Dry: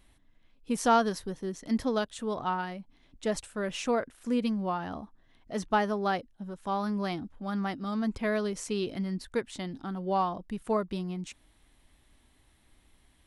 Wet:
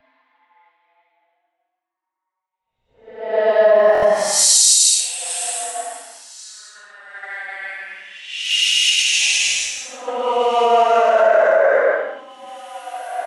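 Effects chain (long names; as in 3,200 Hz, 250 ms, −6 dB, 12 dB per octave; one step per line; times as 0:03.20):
reversed playback
downward compressor 12 to 1, threshold −35 dBFS, peak gain reduction 17 dB
reversed playback
auto-filter high-pass square 1.7 Hz 660–2,200 Hz
on a send: echo with shifted repeats 166 ms, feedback 31%, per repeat +69 Hz, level −13 dB
on the sum: low-pass that shuts in the quiet parts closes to 860 Hz, open at −36.5 dBFS
high-shelf EQ 3,200 Hz +6 dB
extreme stretch with random phases 11×, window 0.10 s, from 0:02.96
boost into a limiter +27.5 dB
buffer that repeats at 0:03.93, samples 1,024, times 3
multiband upward and downward expander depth 100%
level −8.5 dB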